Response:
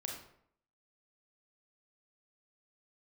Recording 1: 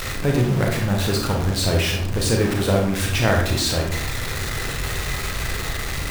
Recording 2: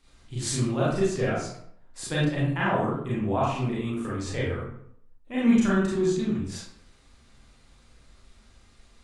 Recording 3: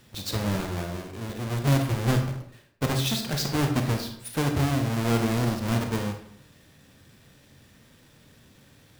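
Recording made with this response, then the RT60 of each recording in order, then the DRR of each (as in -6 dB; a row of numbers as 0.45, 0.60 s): 1; 0.65, 0.65, 0.65 s; 0.0, -8.0, 4.5 dB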